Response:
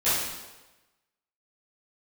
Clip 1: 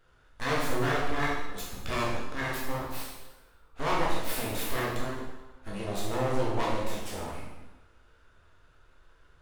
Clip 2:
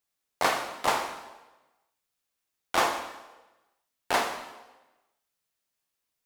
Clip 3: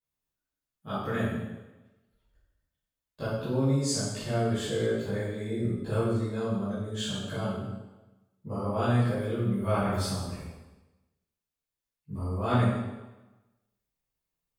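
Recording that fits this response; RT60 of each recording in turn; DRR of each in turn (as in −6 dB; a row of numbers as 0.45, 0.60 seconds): 3; 1.1, 1.1, 1.1 seconds; −5.5, 3.5, −15.5 decibels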